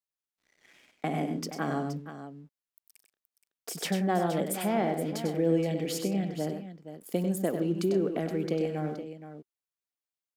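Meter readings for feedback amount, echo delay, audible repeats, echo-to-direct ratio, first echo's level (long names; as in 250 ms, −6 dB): repeats not evenly spaced, 97 ms, 3, −5.5 dB, −7.5 dB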